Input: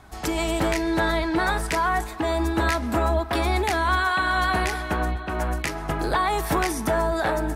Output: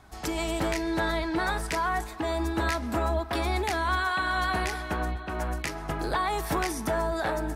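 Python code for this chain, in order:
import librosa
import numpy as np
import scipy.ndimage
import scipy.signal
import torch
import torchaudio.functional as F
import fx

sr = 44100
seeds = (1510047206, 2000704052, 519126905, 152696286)

y = fx.peak_eq(x, sr, hz=5200.0, db=2.0, octaves=0.77)
y = y * librosa.db_to_amplitude(-5.0)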